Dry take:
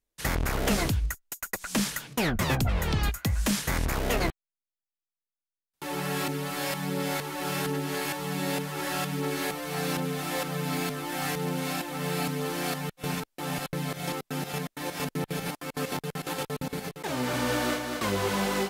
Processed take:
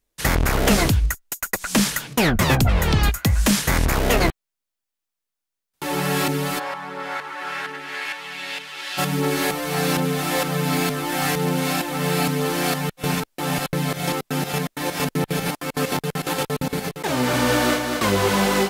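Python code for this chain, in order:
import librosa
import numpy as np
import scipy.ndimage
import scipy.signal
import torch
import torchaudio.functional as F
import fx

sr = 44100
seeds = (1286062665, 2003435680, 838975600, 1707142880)

y = fx.bandpass_q(x, sr, hz=fx.line((6.58, 1000.0), (8.97, 3400.0)), q=1.4, at=(6.58, 8.97), fade=0.02)
y = F.gain(torch.from_numpy(y), 8.5).numpy()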